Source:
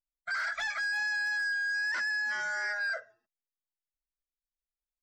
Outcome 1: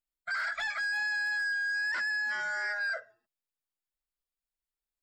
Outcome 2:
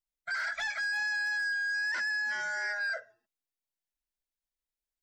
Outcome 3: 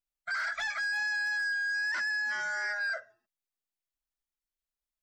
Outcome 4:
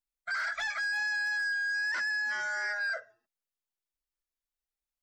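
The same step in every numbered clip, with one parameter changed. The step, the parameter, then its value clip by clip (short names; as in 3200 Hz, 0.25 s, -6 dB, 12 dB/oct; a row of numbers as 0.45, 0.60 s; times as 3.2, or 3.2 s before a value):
notch, frequency: 6000, 1200, 480, 180 Hz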